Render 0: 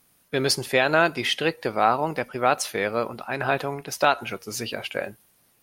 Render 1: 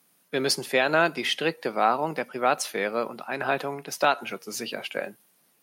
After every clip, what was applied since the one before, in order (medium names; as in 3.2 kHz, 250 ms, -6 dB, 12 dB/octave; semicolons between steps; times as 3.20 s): steep high-pass 150 Hz 36 dB/octave; trim -2 dB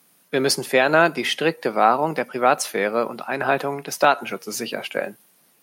dynamic bell 3.6 kHz, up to -4 dB, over -40 dBFS, Q 0.92; trim +6 dB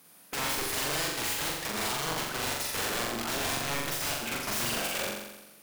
compression 6:1, threshold -25 dBFS, peak gain reduction 14 dB; integer overflow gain 28.5 dB; on a send: flutter echo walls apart 7.4 m, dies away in 1 s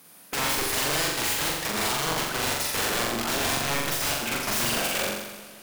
modulated delay 149 ms, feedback 73%, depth 56 cents, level -19 dB; trim +5 dB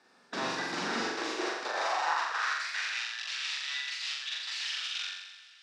every band turned upside down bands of 2 kHz; cabinet simulation 110–5300 Hz, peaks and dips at 160 Hz -6 dB, 350 Hz +5 dB, 800 Hz +3 dB, 3.2 kHz -8 dB; high-pass sweep 190 Hz -> 2.9 kHz, 0.86–3.13 s; trim -6 dB